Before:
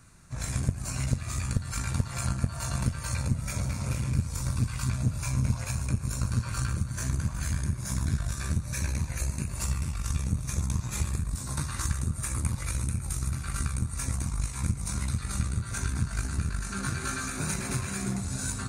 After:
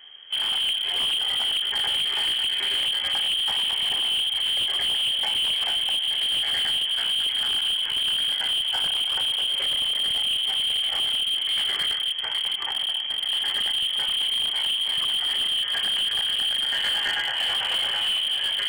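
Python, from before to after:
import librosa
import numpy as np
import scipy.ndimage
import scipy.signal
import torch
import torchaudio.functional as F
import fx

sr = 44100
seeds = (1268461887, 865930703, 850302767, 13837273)

p1 = fx.octave_divider(x, sr, octaves=1, level_db=-5.0)
p2 = fx.low_shelf(p1, sr, hz=390.0, db=-8.0, at=(11.91, 13.3))
p3 = fx.quant_dither(p2, sr, seeds[0], bits=6, dither='none')
p4 = p2 + (p3 * 10.0 ** (-9.5 / 20.0))
p5 = fx.low_shelf(p4, sr, hz=61.0, db=4.5)
p6 = fx.fold_sine(p5, sr, drive_db=10, ceiling_db=-6.5)
p7 = fx.freq_invert(p6, sr, carrier_hz=3200)
p8 = p7 + fx.echo_wet_highpass(p7, sr, ms=80, feedback_pct=33, hz=1600.0, wet_db=-12.5, dry=0)
p9 = fx.slew_limit(p8, sr, full_power_hz=620.0)
y = p9 * 10.0 ** (-8.5 / 20.0)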